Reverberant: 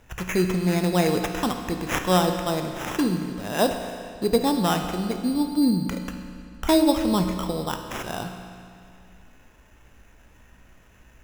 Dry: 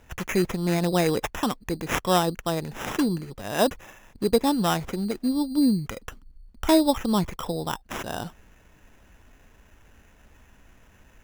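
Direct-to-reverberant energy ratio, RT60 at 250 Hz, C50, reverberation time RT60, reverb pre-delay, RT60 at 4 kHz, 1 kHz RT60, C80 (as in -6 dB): 5.0 dB, 2.3 s, 6.5 dB, 2.3 s, 16 ms, 2.1 s, 2.3 s, 7.5 dB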